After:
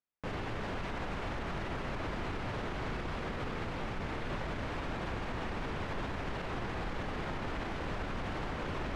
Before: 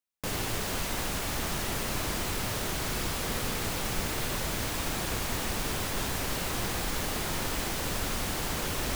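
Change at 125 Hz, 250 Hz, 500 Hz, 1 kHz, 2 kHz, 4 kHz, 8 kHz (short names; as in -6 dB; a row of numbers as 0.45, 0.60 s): -4.0, -3.5, -3.5, -3.5, -5.5, -13.0, -25.5 dB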